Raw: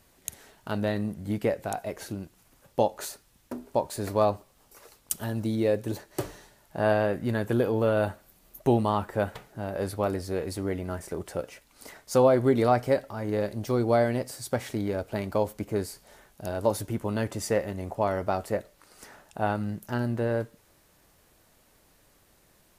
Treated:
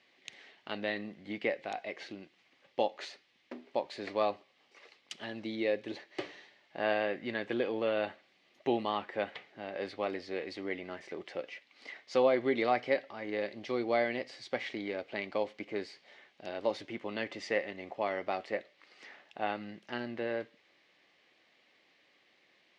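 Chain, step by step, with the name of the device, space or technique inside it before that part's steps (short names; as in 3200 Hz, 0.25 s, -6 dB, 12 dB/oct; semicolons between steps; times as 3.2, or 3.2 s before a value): phone earpiece (speaker cabinet 420–4300 Hz, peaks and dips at 440 Hz -5 dB, 630 Hz -6 dB, 940 Hz -9 dB, 1400 Hz -9 dB, 2100 Hz +7 dB, 3000 Hz +3 dB)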